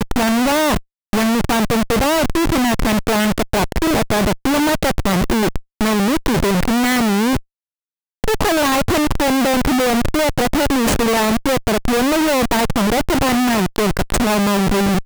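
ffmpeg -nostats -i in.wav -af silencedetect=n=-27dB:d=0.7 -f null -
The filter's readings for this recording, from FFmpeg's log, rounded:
silence_start: 7.39
silence_end: 8.24 | silence_duration: 0.85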